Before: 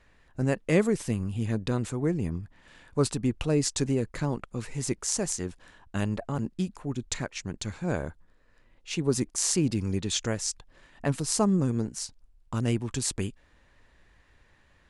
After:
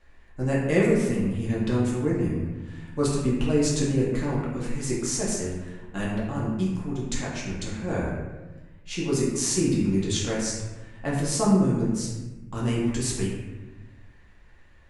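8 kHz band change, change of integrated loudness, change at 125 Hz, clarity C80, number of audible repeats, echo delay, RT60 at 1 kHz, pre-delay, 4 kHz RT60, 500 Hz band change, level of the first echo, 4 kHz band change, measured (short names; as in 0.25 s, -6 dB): +0.5 dB, +3.0 dB, +3.0 dB, 3.5 dB, none, none, 1.1 s, 3 ms, 0.80 s, +3.5 dB, none, +0.5 dB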